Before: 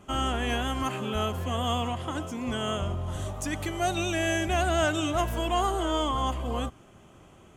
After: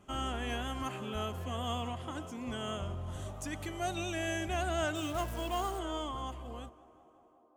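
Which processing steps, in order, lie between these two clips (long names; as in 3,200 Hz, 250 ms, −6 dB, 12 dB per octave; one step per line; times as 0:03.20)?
fade-out on the ending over 2.04 s
0:04.95–0:05.79: floating-point word with a short mantissa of 2 bits
tape delay 184 ms, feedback 89%, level −20 dB, low-pass 2,100 Hz
level −8 dB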